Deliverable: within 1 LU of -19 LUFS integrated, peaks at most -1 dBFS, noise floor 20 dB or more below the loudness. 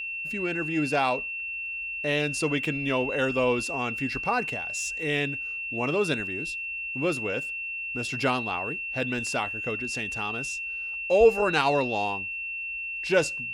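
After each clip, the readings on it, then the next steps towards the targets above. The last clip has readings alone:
tick rate 34 per s; steady tone 2.7 kHz; tone level -31 dBFS; loudness -27.0 LUFS; peak level -7.5 dBFS; loudness target -19.0 LUFS
-> de-click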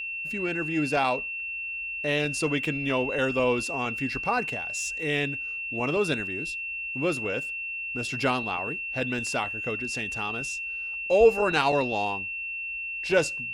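tick rate 0.074 per s; steady tone 2.7 kHz; tone level -31 dBFS
-> band-stop 2.7 kHz, Q 30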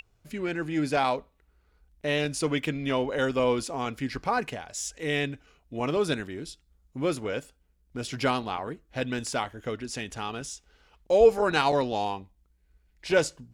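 steady tone not found; loudness -28.5 LUFS; peak level -7.5 dBFS; loudness target -19.0 LUFS
-> trim +9.5 dB; peak limiter -1 dBFS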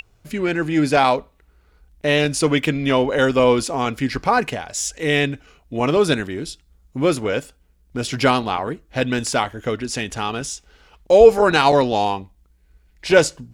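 loudness -19.0 LUFS; peak level -1.0 dBFS; noise floor -58 dBFS

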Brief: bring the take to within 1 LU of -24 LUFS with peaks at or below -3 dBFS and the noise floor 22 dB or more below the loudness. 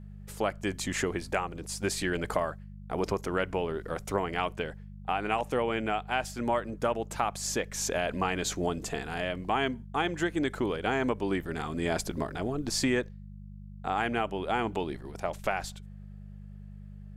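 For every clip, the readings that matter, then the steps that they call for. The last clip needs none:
hum 50 Hz; highest harmonic 200 Hz; hum level -43 dBFS; loudness -31.5 LUFS; peak level -12.0 dBFS; loudness target -24.0 LUFS
-> de-hum 50 Hz, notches 4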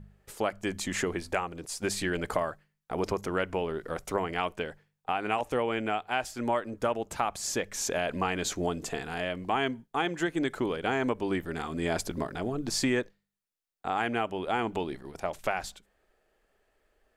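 hum not found; loudness -31.5 LUFS; peak level -12.0 dBFS; loudness target -24.0 LUFS
-> trim +7.5 dB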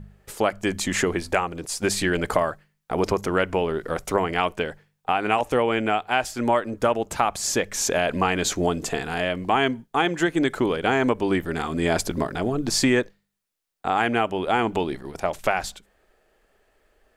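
loudness -24.0 LUFS; peak level -4.5 dBFS; noise floor -74 dBFS

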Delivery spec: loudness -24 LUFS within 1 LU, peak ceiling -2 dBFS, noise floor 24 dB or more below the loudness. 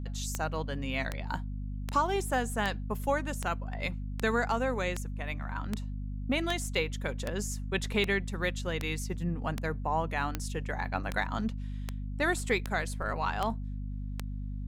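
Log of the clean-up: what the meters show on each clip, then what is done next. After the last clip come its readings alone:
clicks found 19; hum 50 Hz; highest harmonic 250 Hz; hum level -34 dBFS; loudness -33.0 LUFS; peak level -12.5 dBFS; loudness target -24.0 LUFS
-> de-click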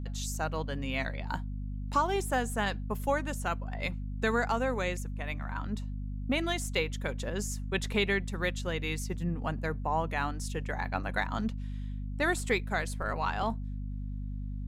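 clicks found 0; hum 50 Hz; highest harmonic 250 Hz; hum level -34 dBFS
-> de-hum 50 Hz, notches 5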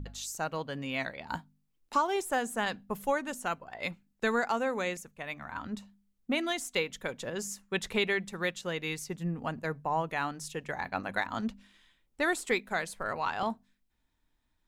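hum not found; loudness -33.5 LUFS; peak level -16.5 dBFS; loudness target -24.0 LUFS
-> trim +9.5 dB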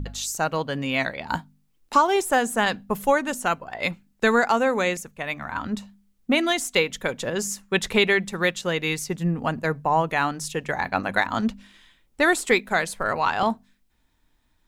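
loudness -24.0 LUFS; peak level -7.0 dBFS; noise floor -66 dBFS

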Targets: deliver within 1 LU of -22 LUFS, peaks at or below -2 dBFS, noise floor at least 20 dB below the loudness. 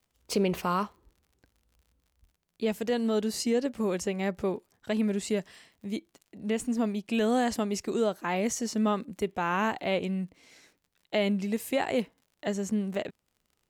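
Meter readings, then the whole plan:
tick rate 49 per s; loudness -30.0 LUFS; peak level -17.0 dBFS; loudness target -22.0 LUFS
-> de-click; trim +8 dB

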